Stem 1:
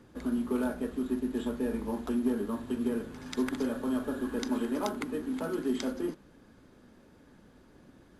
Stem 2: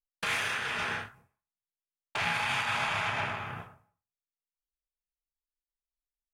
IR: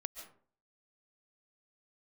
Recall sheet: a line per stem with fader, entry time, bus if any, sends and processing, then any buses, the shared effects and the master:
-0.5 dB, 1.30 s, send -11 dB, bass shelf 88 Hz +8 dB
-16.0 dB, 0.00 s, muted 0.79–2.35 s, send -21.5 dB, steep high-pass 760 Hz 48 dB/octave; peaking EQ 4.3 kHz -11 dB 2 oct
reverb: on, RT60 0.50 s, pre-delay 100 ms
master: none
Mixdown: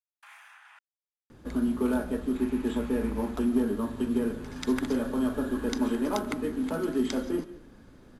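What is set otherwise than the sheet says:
stem 2: send off; reverb return +7.0 dB

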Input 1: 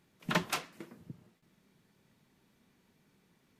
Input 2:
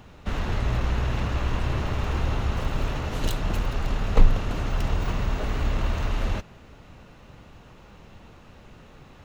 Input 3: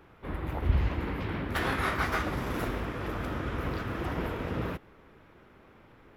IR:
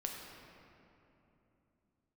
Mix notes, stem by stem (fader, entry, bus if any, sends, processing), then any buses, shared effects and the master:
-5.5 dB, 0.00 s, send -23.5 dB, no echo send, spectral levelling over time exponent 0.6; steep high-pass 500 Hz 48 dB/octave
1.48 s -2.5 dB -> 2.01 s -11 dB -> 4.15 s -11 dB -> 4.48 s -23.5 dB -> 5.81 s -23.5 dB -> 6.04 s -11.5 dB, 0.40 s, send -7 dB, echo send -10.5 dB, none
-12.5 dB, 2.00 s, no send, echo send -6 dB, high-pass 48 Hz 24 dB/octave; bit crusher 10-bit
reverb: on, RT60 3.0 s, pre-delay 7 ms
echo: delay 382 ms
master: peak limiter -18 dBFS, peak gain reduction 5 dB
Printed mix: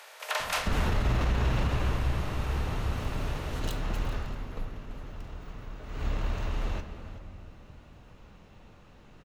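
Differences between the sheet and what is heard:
stem 1 -5.5 dB -> +5.5 dB; stem 2: send -7 dB -> -0.5 dB; stem 3 -12.5 dB -> -20.5 dB

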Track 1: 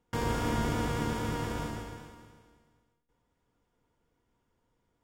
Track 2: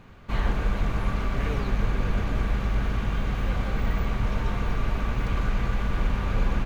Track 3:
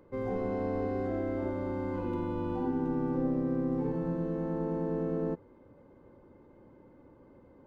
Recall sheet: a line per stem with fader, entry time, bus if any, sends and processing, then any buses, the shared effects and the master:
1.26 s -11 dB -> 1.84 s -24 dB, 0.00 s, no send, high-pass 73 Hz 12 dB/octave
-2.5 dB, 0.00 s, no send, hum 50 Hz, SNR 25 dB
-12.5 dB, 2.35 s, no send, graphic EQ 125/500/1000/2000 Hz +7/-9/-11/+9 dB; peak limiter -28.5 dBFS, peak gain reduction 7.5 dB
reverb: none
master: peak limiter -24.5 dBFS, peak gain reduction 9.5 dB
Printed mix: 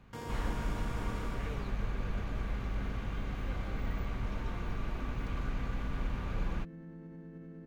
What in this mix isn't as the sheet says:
stem 2 -2.5 dB -> -10.5 dB; master: missing peak limiter -24.5 dBFS, peak gain reduction 9.5 dB

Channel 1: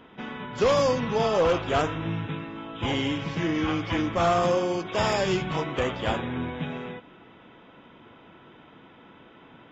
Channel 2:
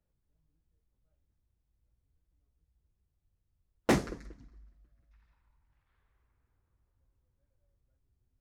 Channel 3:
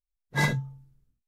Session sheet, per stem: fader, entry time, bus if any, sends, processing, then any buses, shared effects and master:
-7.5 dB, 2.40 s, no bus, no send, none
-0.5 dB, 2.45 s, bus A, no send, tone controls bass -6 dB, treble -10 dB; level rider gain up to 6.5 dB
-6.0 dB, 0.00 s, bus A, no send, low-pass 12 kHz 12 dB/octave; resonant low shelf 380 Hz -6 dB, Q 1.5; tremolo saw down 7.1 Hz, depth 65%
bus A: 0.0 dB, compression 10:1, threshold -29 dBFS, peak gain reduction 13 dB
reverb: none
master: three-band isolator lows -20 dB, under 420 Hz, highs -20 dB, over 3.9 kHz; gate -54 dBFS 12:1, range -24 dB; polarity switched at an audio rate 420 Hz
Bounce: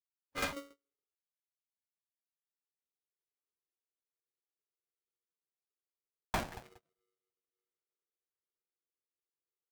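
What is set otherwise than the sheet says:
stem 1: muted; stem 2 -0.5 dB -> -11.5 dB; master: missing three-band isolator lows -20 dB, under 420 Hz, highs -20 dB, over 3.9 kHz

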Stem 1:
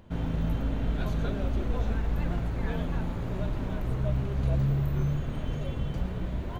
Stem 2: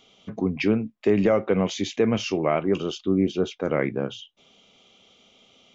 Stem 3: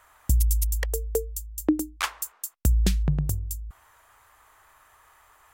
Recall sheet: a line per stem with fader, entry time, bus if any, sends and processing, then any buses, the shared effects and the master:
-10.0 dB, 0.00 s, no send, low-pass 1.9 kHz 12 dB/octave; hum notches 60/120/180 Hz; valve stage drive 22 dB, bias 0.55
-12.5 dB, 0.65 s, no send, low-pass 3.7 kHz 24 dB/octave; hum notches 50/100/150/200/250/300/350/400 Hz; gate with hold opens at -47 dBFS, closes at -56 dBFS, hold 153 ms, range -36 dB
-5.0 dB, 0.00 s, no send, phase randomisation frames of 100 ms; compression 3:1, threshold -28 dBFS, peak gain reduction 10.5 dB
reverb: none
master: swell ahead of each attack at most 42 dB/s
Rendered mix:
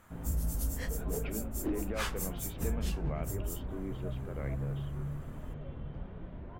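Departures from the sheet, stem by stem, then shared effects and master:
stem 1: missing valve stage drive 22 dB, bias 0.55; stem 2 -12.5 dB -> -19.0 dB; master: missing swell ahead of each attack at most 42 dB/s

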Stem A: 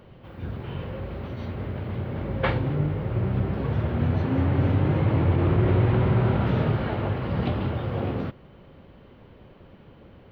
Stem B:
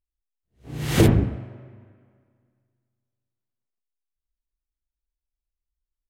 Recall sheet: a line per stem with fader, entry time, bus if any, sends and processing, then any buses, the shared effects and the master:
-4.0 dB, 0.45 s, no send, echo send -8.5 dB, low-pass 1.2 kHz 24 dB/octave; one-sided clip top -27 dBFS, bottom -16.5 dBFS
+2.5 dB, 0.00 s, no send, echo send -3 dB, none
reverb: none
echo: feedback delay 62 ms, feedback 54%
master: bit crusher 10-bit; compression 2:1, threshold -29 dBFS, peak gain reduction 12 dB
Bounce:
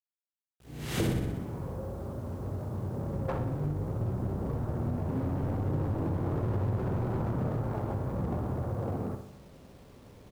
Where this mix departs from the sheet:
stem A: entry 0.45 s -> 0.85 s; stem B +2.5 dB -> -8.5 dB

